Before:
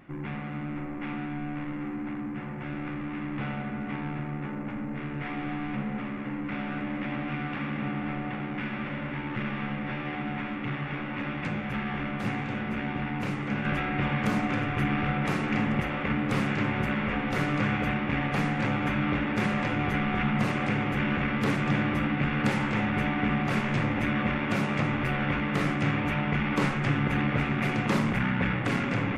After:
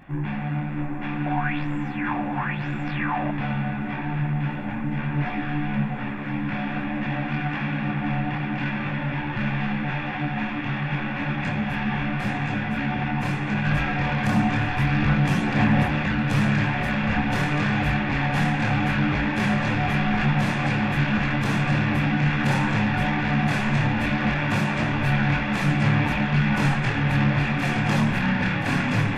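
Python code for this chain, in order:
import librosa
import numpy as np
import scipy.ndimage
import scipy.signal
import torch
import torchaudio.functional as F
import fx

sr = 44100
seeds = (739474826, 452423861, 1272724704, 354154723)

y = x + 0.43 * np.pad(x, (int(1.2 * sr / 1000.0), 0))[:len(x)]
y = 10.0 ** (-22.5 / 20.0) * np.tanh(y / 10.0 ** (-22.5 / 20.0))
y = fx.chorus_voices(y, sr, voices=4, hz=0.72, base_ms=24, depth_ms=4.5, mix_pct=45)
y = fx.echo_wet_highpass(y, sr, ms=1024, feedback_pct=50, hz=1500.0, wet_db=-5.0)
y = fx.bell_lfo(y, sr, hz=1.0, low_hz=620.0, high_hz=7500.0, db=18, at=(1.26, 3.31))
y = y * librosa.db_to_amplitude(8.5)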